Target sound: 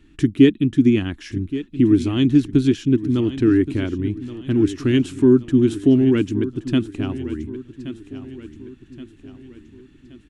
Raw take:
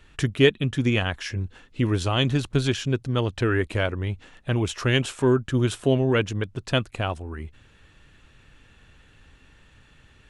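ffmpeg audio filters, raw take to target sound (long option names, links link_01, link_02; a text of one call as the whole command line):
ffmpeg -i in.wav -filter_complex "[0:a]firequalizer=gain_entry='entry(120,0);entry(310,15);entry(490,-11);entry(2000,-5)':delay=0.05:min_phase=1,asplit=2[link_01][link_02];[link_02]aecho=0:1:1124|2248|3372|4496:0.2|0.0938|0.0441|0.0207[link_03];[link_01][link_03]amix=inputs=2:normalize=0" out.wav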